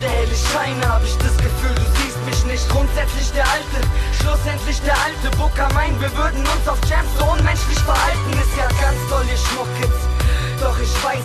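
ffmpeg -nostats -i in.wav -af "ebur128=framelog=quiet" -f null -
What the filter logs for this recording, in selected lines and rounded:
Integrated loudness:
  I:         -18.5 LUFS
  Threshold: -28.5 LUFS
Loudness range:
  LRA:         1.1 LU
  Threshold: -38.5 LUFS
  LRA low:   -19.0 LUFS
  LRA high:  -17.9 LUFS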